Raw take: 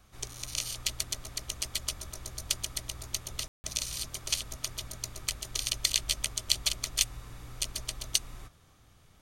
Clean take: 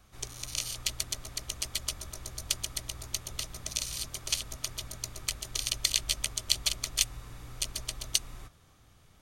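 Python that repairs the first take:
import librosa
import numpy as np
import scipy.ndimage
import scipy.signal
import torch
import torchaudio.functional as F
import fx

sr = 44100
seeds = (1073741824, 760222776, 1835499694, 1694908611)

y = fx.fix_ambience(x, sr, seeds[0], print_start_s=8.52, print_end_s=9.02, start_s=3.48, end_s=3.64)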